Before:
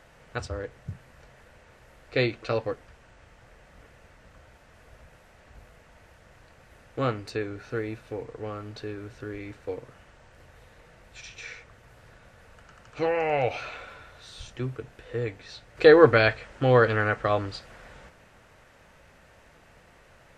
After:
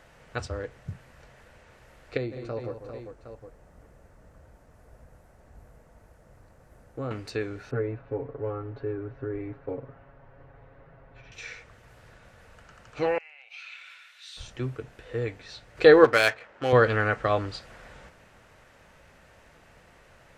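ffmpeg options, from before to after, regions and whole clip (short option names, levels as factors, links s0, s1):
-filter_complex "[0:a]asettb=1/sr,asplit=3[s0][s1][s2];[s0]atrim=end=2.174[s3];[s1]atrim=start=2.17:end=7.11,asetpts=PTS-STARTPTS,afade=t=in:d=0.004:c=qsin,afade=t=out:st=4.936:d=0.004:c=qsin,aecho=1:1:146|192|397|762:0.211|0.224|0.282|0.168,atrim=end_sample=217854,acompressor=threshold=0.0158:ratio=1.5:attack=3.2:release=140:knee=1:detection=peak,equalizer=f=3000:w=0.6:g=-14.5[s4];[s2]atrim=start=7.106[s5];[s3][s4]acrossfade=d=0.004:c1=hsin:c2=qsin[s6];[s6][s5]acrossfade=d=0.004:c1=qsin:c2=hsin,asettb=1/sr,asplit=3[s7][s8][s9];[s7]atrim=end=7.714[s10];[s8]atrim=start=7.71:end=11.32,asetpts=PTS-STARTPTS,afade=t=in:d=0.004:c=qsin,afade=t=out:st=3.606:d=0.004:c=qsin,lowpass=1200,aecho=1:1:7.3:0.97,atrim=end_sample=159201[s11];[s9]atrim=start=11.316[s12];[s10][s11]acrossfade=d=0.004:c1=hsin:c2=qsin[s13];[s13][s12]acrossfade=d=0.004:c1=qsin:c2=hsin,asettb=1/sr,asplit=3[s14][s15][s16];[s14]atrim=end=13.184[s17];[s15]atrim=start=13.18:end=14.37,asetpts=PTS-STARTPTS,afade=t=in:d=0.004:c=qsin,afade=t=out:st=1.186:d=0.004:c=qsin,acompressor=threshold=0.01:ratio=10:attack=3.2:release=140:knee=1:detection=peak,highpass=f=2400:t=q:w=1.7[s18];[s16]atrim=start=14.366[s19];[s17][s18]acrossfade=d=0.004:c1=hsin:c2=qsin[s20];[s20][s19]acrossfade=d=0.004:c1=qsin:c2=hsin,asettb=1/sr,asplit=3[s21][s22][s23];[s21]atrim=end=16.044[s24];[s22]atrim=start=16.04:end=16.73,asetpts=PTS-STARTPTS,afade=t=in:d=0.004:c=qsin,afade=t=out:st=0.686:d=0.004:c=qsin,highpass=f=530:p=1,highshelf=f=5600:g=10,adynamicsmooth=sensitivity=4:basefreq=1800[s25];[s23]atrim=start=16.726[s26];[s24][s25]acrossfade=d=0.004:c1=hsin:c2=qsin[s27];[s27][s26]acrossfade=d=0.004:c1=qsin:c2=hsin"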